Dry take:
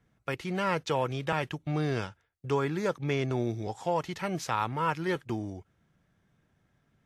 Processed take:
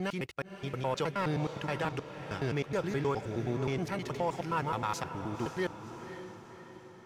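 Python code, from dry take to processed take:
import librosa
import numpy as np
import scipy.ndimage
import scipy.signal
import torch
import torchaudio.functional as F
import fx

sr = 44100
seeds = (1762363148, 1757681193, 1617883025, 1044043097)

y = fx.block_reorder(x, sr, ms=105.0, group=6)
y = fx.leveller(y, sr, passes=1)
y = fx.echo_diffused(y, sr, ms=531, feedback_pct=54, wet_db=-10)
y = F.gain(torch.from_numpy(y), -6.0).numpy()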